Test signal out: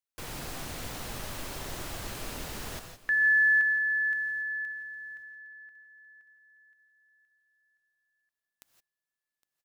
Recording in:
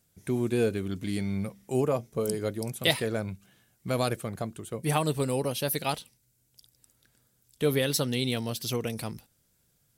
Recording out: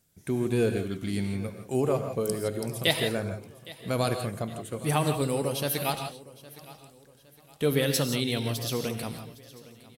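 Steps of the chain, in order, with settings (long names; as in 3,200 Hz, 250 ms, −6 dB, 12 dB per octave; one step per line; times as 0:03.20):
on a send: repeating echo 812 ms, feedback 37%, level −19.5 dB
on the sum: reverb whose tail is shaped and stops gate 190 ms rising, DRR 6 dB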